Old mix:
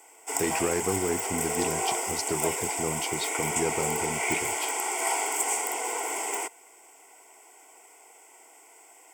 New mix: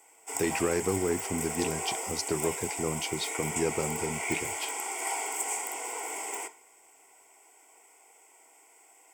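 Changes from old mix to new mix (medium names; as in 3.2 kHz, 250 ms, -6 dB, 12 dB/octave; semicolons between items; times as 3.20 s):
background -7.0 dB; reverb: on, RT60 0.50 s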